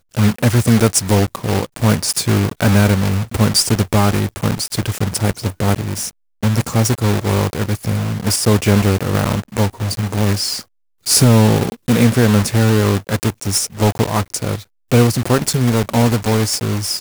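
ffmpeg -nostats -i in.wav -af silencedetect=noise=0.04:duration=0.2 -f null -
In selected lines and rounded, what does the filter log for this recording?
silence_start: 6.10
silence_end: 6.43 | silence_duration: 0.32
silence_start: 10.61
silence_end: 11.06 | silence_duration: 0.45
silence_start: 14.62
silence_end: 14.92 | silence_duration: 0.30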